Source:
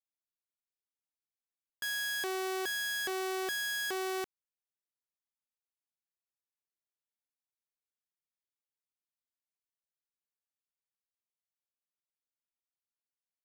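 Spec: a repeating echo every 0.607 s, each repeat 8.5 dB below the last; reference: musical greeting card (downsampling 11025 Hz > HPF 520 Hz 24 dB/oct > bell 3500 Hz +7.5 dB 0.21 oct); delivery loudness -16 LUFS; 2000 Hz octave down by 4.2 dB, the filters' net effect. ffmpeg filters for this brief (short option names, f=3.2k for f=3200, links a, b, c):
-af "equalizer=f=2k:t=o:g=-5.5,aecho=1:1:607|1214|1821|2428:0.376|0.143|0.0543|0.0206,aresample=11025,aresample=44100,highpass=f=520:w=0.5412,highpass=f=520:w=1.3066,equalizer=f=3.5k:t=o:w=0.21:g=7.5,volume=20dB"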